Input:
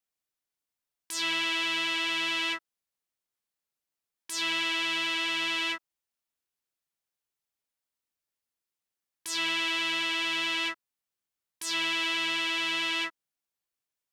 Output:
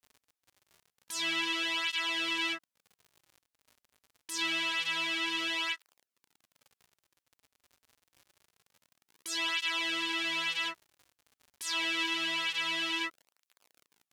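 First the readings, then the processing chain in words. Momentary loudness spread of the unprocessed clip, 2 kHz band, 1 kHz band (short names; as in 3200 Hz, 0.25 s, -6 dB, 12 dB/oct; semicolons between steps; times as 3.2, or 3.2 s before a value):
8 LU, -3.0 dB, -3.0 dB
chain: crackle 48/s -42 dBFS; tape flanging out of phase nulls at 0.26 Hz, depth 6.3 ms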